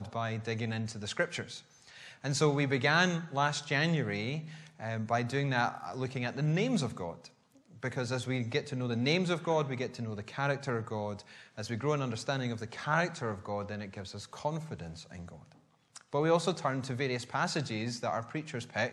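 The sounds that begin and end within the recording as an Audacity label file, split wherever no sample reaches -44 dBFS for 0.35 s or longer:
7.830000	15.520000	sound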